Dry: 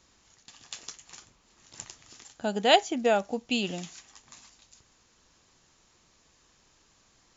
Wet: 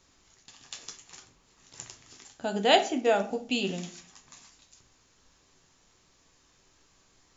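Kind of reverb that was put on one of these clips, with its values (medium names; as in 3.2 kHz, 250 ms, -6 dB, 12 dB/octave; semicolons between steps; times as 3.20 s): simulated room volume 42 m³, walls mixed, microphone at 0.33 m; trim -1.5 dB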